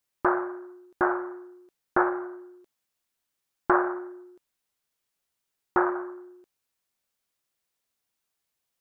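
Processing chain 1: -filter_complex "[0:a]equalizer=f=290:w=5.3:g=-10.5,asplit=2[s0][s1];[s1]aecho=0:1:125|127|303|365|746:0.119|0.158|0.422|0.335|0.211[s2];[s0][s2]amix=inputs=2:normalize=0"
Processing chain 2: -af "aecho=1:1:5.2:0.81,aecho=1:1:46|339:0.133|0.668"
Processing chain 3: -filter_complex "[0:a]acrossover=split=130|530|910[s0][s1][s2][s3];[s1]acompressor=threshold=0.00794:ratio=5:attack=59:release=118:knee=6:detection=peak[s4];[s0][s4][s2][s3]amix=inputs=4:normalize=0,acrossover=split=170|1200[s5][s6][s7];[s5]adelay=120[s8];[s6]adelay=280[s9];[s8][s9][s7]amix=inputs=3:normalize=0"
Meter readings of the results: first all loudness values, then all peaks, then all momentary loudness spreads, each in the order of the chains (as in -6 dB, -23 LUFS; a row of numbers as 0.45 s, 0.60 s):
-29.5 LUFS, -24.5 LUFS, -34.0 LUFS; -8.0 dBFS, -6.0 dBFS, -11.5 dBFS; 15 LU, 15 LU, 17 LU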